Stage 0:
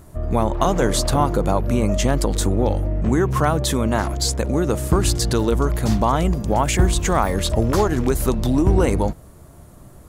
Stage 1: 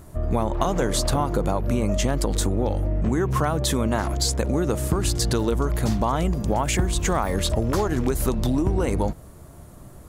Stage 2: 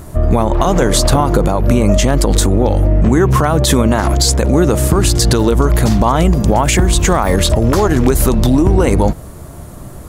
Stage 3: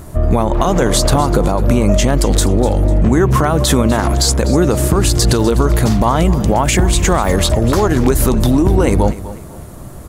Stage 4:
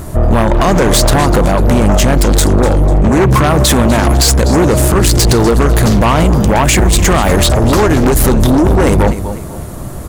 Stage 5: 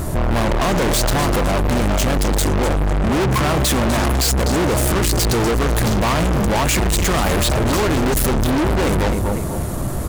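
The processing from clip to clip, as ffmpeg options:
-af "acompressor=threshold=-18dB:ratio=6"
-af "alimiter=level_in=13.5dB:limit=-1dB:release=50:level=0:latency=1,volume=-1dB"
-af "aecho=1:1:249|498|747:0.168|0.0571|0.0194,volume=-1dB"
-af "aeval=exprs='0.841*(cos(1*acos(clip(val(0)/0.841,-1,1)))-cos(1*PI/2))+0.299*(cos(5*acos(clip(val(0)/0.841,-1,1)))-cos(5*PI/2))':c=same,volume=-1dB"
-af "asoftclip=type=hard:threshold=-18dB,volume=2dB"

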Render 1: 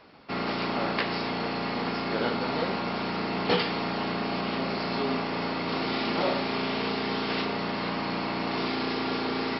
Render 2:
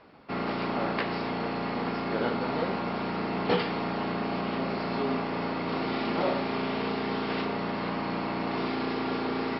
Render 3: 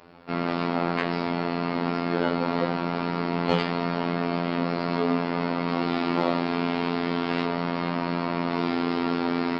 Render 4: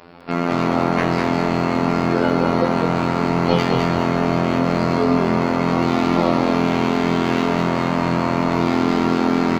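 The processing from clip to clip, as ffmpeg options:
-af "lowpass=f=2k:p=1"
-af "afftfilt=real='hypot(re,im)*cos(PI*b)':imag='0':win_size=2048:overlap=0.75,acontrast=75"
-filter_complex "[0:a]asplit=2[a][b];[b]aeval=exprs='0.2*(abs(mod(val(0)/0.2+3,4)-2)-1)':c=same,volume=-7.5dB[c];[a][c]amix=inputs=2:normalize=0,asplit=5[d][e][f][g][h];[e]adelay=206,afreqshift=-42,volume=-4dB[i];[f]adelay=412,afreqshift=-84,volume=-13.1dB[j];[g]adelay=618,afreqshift=-126,volume=-22.2dB[k];[h]adelay=824,afreqshift=-168,volume=-31.4dB[l];[d][i][j][k][l]amix=inputs=5:normalize=0,volume=4dB"

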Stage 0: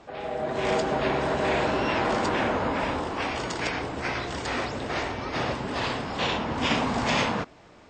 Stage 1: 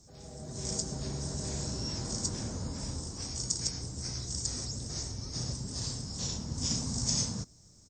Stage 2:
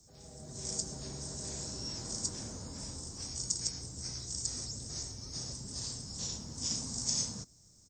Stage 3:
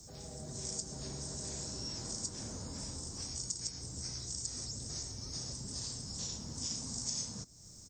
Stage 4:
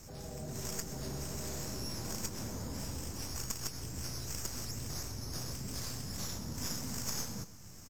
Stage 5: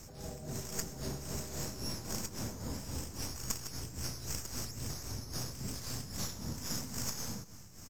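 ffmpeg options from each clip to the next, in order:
-af "firequalizer=gain_entry='entry(120,0);entry(290,-14);entry(700,-23);entry(2700,-26);entry(5500,10)':delay=0.05:min_phase=1"
-filter_complex "[0:a]acrossover=split=240|4000[a][b][c];[a]alimiter=level_in=11dB:limit=-24dB:level=0:latency=1:release=102,volume=-11dB[d];[d][b][c]amix=inputs=3:normalize=0,crystalizer=i=1:c=0,volume=-5.5dB"
-af "acompressor=threshold=-55dB:ratio=2,volume=8.5dB"
-filter_complex "[0:a]acrossover=split=460|2500[a][b][c];[c]aeval=exprs='max(val(0),0)':c=same[d];[a][b][d]amix=inputs=3:normalize=0,aecho=1:1:127|254|381|508|635:0.158|0.0824|0.0429|0.0223|0.0116,volume=3.5dB"
-af "tremolo=f=3.7:d=0.6,volume=2.5dB"

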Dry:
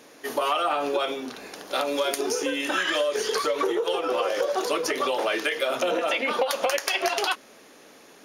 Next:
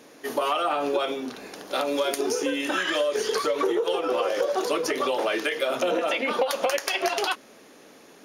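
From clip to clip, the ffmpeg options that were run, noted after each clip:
-af "equalizer=f=200:t=o:w=2.9:g=4,volume=-1.5dB"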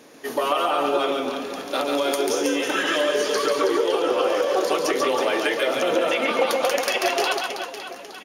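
-af "aecho=1:1:140|322|558.6|866.2|1266:0.631|0.398|0.251|0.158|0.1,volume=1.5dB"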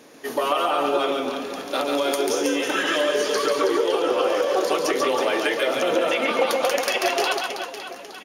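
-af anull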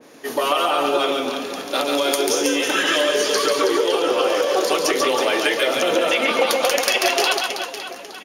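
-af "highpass=59,adynamicequalizer=threshold=0.0178:dfrequency=2200:dqfactor=0.7:tfrequency=2200:tqfactor=0.7:attack=5:release=100:ratio=0.375:range=2.5:mode=boostabove:tftype=highshelf,volume=2dB"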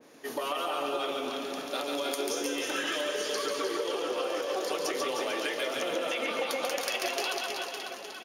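-filter_complex "[0:a]acompressor=threshold=-23dB:ratio=2,asplit=2[a][b];[b]aecho=0:1:303|786:0.398|0.158[c];[a][c]amix=inputs=2:normalize=0,volume=-9dB"

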